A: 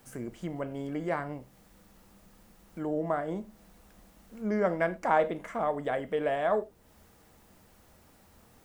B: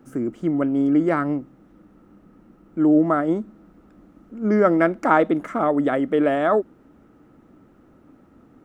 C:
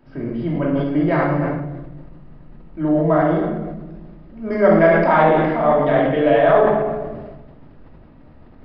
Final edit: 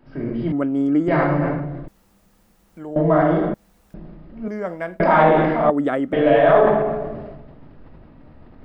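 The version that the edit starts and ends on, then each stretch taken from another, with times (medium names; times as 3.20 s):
C
0.52–1.08 s: from B
1.88–2.96 s: from A
3.54–3.94 s: from A
4.48–5.00 s: from A
5.70–6.13 s: from B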